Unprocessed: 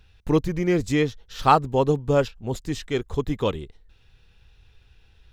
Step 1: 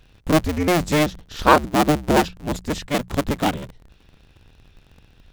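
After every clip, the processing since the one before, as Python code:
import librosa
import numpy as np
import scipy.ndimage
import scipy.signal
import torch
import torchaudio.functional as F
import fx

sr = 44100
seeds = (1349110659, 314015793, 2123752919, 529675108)

y = fx.cycle_switch(x, sr, every=2, mode='inverted')
y = fx.hum_notches(y, sr, base_hz=60, count=3)
y = y * librosa.db_to_amplitude(3.0)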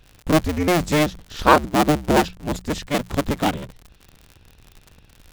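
y = fx.dmg_crackle(x, sr, seeds[0], per_s=63.0, level_db=-32.0)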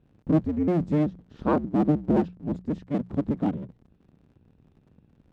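y = fx.bandpass_q(x, sr, hz=210.0, q=1.2)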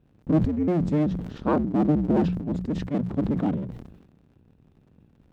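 y = fx.sustainer(x, sr, db_per_s=58.0)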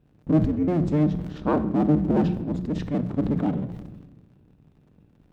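y = fx.room_shoebox(x, sr, seeds[1], volume_m3=540.0, walls='mixed', distance_m=0.4)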